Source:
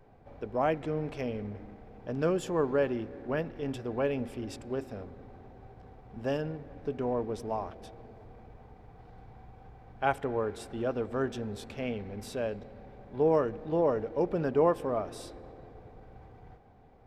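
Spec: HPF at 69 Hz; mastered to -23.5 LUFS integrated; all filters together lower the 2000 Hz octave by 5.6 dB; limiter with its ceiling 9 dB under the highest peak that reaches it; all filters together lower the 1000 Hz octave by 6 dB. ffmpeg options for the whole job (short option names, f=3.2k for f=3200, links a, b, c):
-af "highpass=69,equalizer=f=1k:t=o:g=-7.5,equalizer=f=2k:t=o:g=-4.5,volume=13.5dB,alimiter=limit=-12dB:level=0:latency=1"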